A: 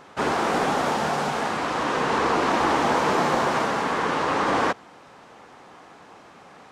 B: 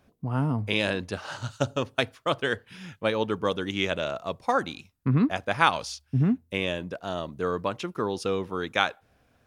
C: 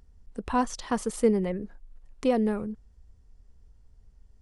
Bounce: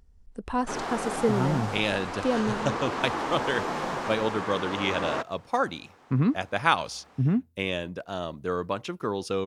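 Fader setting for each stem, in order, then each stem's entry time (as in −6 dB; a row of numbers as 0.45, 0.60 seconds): −9.0, −1.0, −2.0 decibels; 0.50, 1.05, 0.00 seconds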